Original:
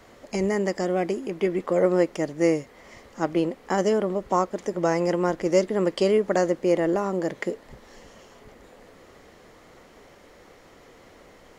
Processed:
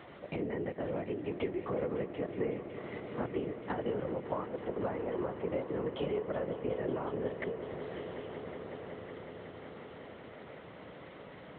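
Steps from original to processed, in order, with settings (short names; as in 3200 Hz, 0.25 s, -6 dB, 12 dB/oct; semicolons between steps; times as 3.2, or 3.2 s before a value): compressor 6:1, threshold -34 dBFS, peak gain reduction 18 dB; LPC vocoder at 8 kHz whisper; HPF 160 Hz 12 dB/oct; low shelf 450 Hz +4 dB; swelling echo 0.185 s, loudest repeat 5, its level -15.5 dB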